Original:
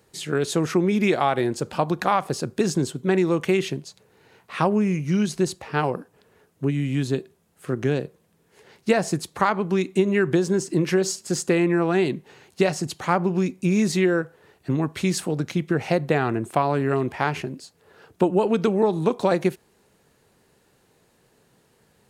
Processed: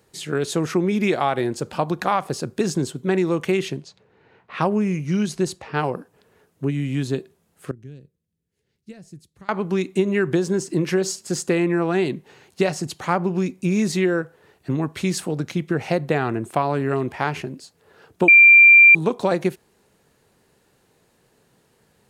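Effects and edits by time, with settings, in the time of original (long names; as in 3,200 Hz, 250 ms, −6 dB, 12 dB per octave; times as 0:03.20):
0:03.52–0:05.93: low-pass that shuts in the quiet parts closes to 2,400 Hz, open at −20.5 dBFS
0:07.71–0:09.49: guitar amp tone stack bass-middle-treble 10-0-1
0:18.28–0:18.95: beep over 2,370 Hz −6 dBFS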